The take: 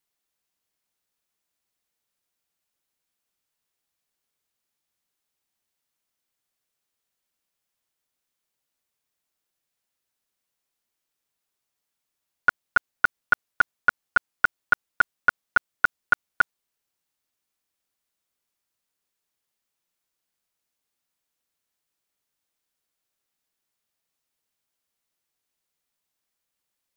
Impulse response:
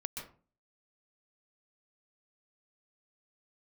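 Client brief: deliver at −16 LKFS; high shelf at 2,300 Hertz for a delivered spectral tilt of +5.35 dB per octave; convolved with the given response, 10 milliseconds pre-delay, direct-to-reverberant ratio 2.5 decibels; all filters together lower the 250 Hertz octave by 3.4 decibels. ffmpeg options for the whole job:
-filter_complex "[0:a]equalizer=frequency=250:width_type=o:gain=-4.5,highshelf=frequency=2300:gain=-6,asplit=2[link_01][link_02];[1:a]atrim=start_sample=2205,adelay=10[link_03];[link_02][link_03]afir=irnorm=-1:irlink=0,volume=-2.5dB[link_04];[link_01][link_04]amix=inputs=2:normalize=0,volume=9dB"

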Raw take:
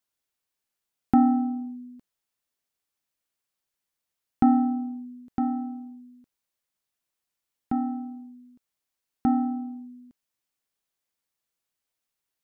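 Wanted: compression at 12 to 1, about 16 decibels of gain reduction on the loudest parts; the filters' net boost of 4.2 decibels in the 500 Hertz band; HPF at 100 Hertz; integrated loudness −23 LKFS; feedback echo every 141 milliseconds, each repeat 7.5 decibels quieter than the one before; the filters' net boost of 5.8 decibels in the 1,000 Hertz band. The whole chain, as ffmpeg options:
ffmpeg -i in.wav -af "highpass=100,equalizer=frequency=500:width_type=o:gain=6,equalizer=frequency=1000:width_type=o:gain=5.5,acompressor=threshold=-27dB:ratio=12,aecho=1:1:141|282|423|564|705:0.422|0.177|0.0744|0.0312|0.0131,volume=11dB" out.wav

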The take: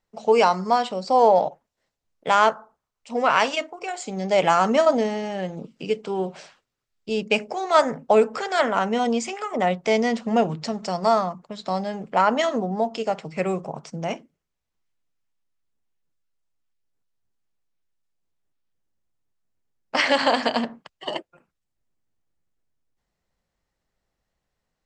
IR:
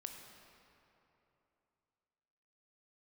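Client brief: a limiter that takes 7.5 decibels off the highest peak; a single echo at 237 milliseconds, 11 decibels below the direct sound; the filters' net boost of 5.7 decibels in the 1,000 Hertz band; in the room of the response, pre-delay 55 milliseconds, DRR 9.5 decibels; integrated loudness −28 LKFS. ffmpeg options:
-filter_complex "[0:a]equalizer=frequency=1000:width_type=o:gain=7.5,alimiter=limit=-7dB:level=0:latency=1,aecho=1:1:237:0.282,asplit=2[link_01][link_02];[1:a]atrim=start_sample=2205,adelay=55[link_03];[link_02][link_03]afir=irnorm=-1:irlink=0,volume=-6dB[link_04];[link_01][link_04]amix=inputs=2:normalize=0,volume=-7.5dB"

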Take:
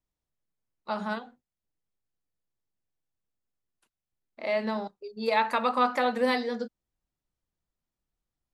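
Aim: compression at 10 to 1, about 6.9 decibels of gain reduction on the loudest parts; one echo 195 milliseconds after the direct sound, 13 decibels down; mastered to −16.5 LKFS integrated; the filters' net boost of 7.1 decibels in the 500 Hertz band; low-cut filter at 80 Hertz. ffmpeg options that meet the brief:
ffmpeg -i in.wav -af "highpass=80,equalizer=frequency=500:width_type=o:gain=8,acompressor=threshold=-21dB:ratio=10,aecho=1:1:195:0.224,volume=11.5dB" out.wav

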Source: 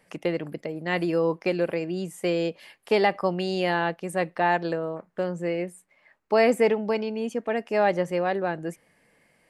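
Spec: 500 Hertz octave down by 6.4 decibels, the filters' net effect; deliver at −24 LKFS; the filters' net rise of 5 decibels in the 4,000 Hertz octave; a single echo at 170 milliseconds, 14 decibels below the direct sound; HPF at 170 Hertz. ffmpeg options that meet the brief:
ffmpeg -i in.wav -af "highpass=170,equalizer=frequency=500:width_type=o:gain=-8,equalizer=frequency=4000:width_type=o:gain=7,aecho=1:1:170:0.2,volume=5dB" out.wav

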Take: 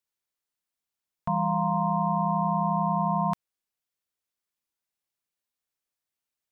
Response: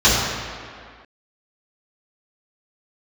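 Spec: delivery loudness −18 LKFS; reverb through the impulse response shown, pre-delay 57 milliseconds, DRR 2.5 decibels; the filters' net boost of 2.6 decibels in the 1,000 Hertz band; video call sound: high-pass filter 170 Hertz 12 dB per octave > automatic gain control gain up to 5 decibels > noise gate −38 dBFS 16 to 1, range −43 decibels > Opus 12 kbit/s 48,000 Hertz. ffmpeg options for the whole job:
-filter_complex "[0:a]equalizer=frequency=1000:width_type=o:gain=3,asplit=2[link_01][link_02];[1:a]atrim=start_sample=2205,adelay=57[link_03];[link_02][link_03]afir=irnorm=-1:irlink=0,volume=-27.5dB[link_04];[link_01][link_04]amix=inputs=2:normalize=0,highpass=170,dynaudnorm=maxgain=5dB,agate=range=-43dB:threshold=-38dB:ratio=16,volume=6.5dB" -ar 48000 -c:a libopus -b:a 12k

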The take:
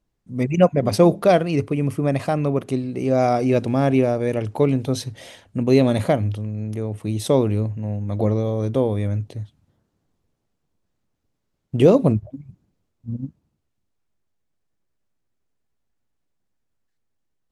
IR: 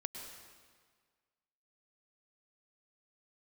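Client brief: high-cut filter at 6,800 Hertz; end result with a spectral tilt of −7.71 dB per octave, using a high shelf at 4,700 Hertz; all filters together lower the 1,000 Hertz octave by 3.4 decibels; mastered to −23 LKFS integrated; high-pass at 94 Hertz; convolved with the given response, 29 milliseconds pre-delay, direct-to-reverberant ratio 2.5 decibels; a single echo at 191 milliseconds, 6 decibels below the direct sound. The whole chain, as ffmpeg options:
-filter_complex "[0:a]highpass=94,lowpass=6800,equalizer=frequency=1000:width_type=o:gain=-5.5,highshelf=frequency=4700:gain=-3.5,aecho=1:1:191:0.501,asplit=2[link_01][link_02];[1:a]atrim=start_sample=2205,adelay=29[link_03];[link_02][link_03]afir=irnorm=-1:irlink=0,volume=-1.5dB[link_04];[link_01][link_04]amix=inputs=2:normalize=0,volume=-4.5dB"

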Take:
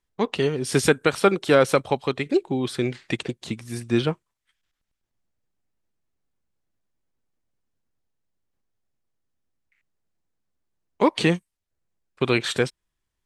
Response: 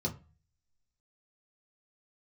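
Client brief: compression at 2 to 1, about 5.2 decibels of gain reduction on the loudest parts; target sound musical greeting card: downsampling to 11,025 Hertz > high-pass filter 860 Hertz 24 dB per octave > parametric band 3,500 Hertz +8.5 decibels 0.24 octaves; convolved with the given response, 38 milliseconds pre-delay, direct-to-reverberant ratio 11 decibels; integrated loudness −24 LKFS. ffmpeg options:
-filter_complex "[0:a]acompressor=threshold=-22dB:ratio=2,asplit=2[link_01][link_02];[1:a]atrim=start_sample=2205,adelay=38[link_03];[link_02][link_03]afir=irnorm=-1:irlink=0,volume=-14.5dB[link_04];[link_01][link_04]amix=inputs=2:normalize=0,aresample=11025,aresample=44100,highpass=frequency=860:width=0.5412,highpass=frequency=860:width=1.3066,equalizer=frequency=3500:width_type=o:width=0.24:gain=8.5,volume=7dB"

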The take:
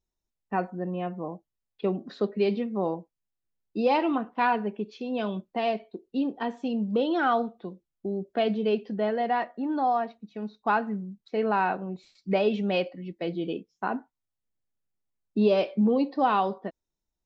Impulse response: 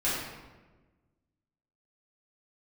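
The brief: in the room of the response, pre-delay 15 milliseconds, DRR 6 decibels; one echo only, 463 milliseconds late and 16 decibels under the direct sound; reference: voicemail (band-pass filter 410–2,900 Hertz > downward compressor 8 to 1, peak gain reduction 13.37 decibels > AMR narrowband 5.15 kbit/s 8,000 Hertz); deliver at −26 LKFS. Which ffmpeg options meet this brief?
-filter_complex "[0:a]aecho=1:1:463:0.158,asplit=2[link_01][link_02];[1:a]atrim=start_sample=2205,adelay=15[link_03];[link_02][link_03]afir=irnorm=-1:irlink=0,volume=-16dB[link_04];[link_01][link_04]amix=inputs=2:normalize=0,highpass=410,lowpass=2900,acompressor=threshold=-32dB:ratio=8,volume=13dB" -ar 8000 -c:a libopencore_amrnb -b:a 5150

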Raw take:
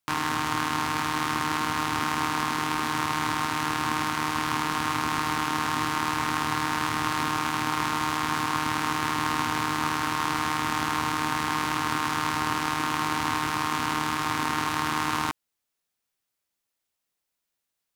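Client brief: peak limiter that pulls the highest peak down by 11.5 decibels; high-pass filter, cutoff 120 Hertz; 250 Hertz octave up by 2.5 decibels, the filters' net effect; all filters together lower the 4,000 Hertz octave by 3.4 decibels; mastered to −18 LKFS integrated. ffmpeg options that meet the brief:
ffmpeg -i in.wav -af "highpass=120,equalizer=frequency=250:width_type=o:gain=3.5,equalizer=frequency=4000:width_type=o:gain=-4.5,volume=16.5dB,alimiter=limit=-5dB:level=0:latency=1" out.wav

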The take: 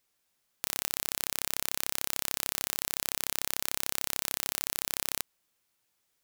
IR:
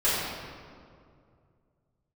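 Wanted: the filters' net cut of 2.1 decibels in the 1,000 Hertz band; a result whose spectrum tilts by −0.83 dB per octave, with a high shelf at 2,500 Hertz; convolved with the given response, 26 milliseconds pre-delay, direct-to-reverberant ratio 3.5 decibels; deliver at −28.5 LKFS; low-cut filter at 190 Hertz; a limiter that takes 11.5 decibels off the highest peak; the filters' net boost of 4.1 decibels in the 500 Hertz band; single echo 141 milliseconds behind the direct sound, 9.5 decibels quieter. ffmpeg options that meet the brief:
-filter_complex "[0:a]highpass=190,equalizer=frequency=500:width_type=o:gain=6.5,equalizer=frequency=1000:width_type=o:gain=-3.5,highshelf=frequency=2500:gain=-6.5,alimiter=limit=-20dB:level=0:latency=1,aecho=1:1:141:0.335,asplit=2[link_01][link_02];[1:a]atrim=start_sample=2205,adelay=26[link_03];[link_02][link_03]afir=irnorm=-1:irlink=0,volume=-18dB[link_04];[link_01][link_04]amix=inputs=2:normalize=0,volume=18dB"

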